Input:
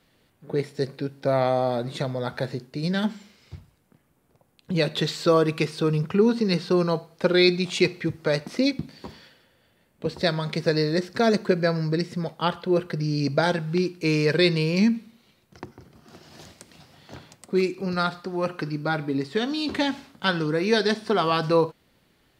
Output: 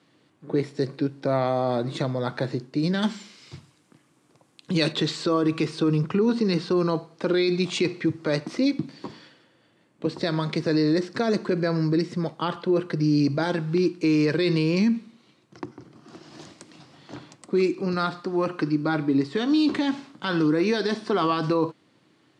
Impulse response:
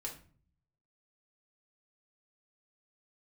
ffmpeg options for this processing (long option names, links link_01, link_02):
-filter_complex "[0:a]highpass=frequency=110:width=0.5412,highpass=frequency=110:width=1.3066,equalizer=frequency=130:width_type=q:width=4:gain=3,equalizer=frequency=310:width_type=q:width=4:gain=10,equalizer=frequency=1100:width_type=q:width=4:gain=5,lowpass=frequency=8800:width=0.5412,lowpass=frequency=8800:width=1.3066,alimiter=limit=-14dB:level=0:latency=1:release=37,asplit=3[link_01][link_02][link_03];[link_01]afade=type=out:start_time=3.02:duration=0.02[link_04];[link_02]highshelf=frequency=2000:gain=11,afade=type=in:start_time=3.02:duration=0.02,afade=type=out:start_time=4.91:duration=0.02[link_05];[link_03]afade=type=in:start_time=4.91:duration=0.02[link_06];[link_04][link_05][link_06]amix=inputs=3:normalize=0"